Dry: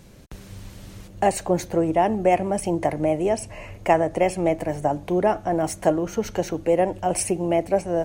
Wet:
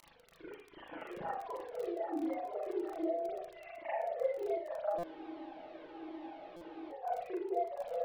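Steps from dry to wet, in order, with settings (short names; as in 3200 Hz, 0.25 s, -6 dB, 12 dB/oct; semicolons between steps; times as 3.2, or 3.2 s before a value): sine-wave speech; LPF 1200 Hz 6 dB/oct; gate with hold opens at -50 dBFS; harmonic-percussive split harmonic +8 dB; compressor 6:1, threshold -49 dBFS, peak gain reduction 38.5 dB; crackle 15/s -42 dBFS; reverb RT60 0.60 s, pre-delay 34 ms, DRR -8 dB; spectral freeze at 5.07, 1.83 s; stuck buffer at 4.98/6.56, samples 256, times 8; cascading flanger falling 1.3 Hz; gain +7 dB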